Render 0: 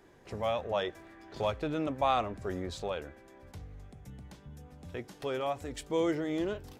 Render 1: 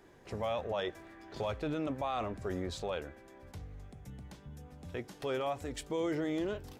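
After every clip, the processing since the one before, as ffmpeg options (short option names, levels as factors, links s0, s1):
-af "alimiter=level_in=1.33:limit=0.0631:level=0:latency=1:release=13,volume=0.75"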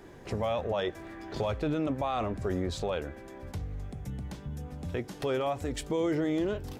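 -filter_complex "[0:a]lowshelf=f=430:g=4.5,asplit=2[s0][s1];[s1]acompressor=threshold=0.00891:ratio=6,volume=1.26[s2];[s0][s2]amix=inputs=2:normalize=0"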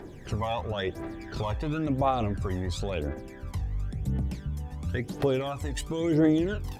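-af "aphaser=in_gain=1:out_gain=1:delay=1.2:decay=0.66:speed=0.96:type=triangular"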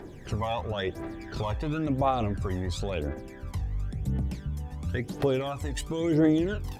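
-af anull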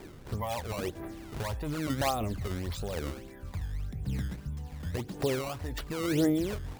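-af "acrusher=samples=15:mix=1:aa=0.000001:lfo=1:lforange=24:lforate=1.7,volume=0.631"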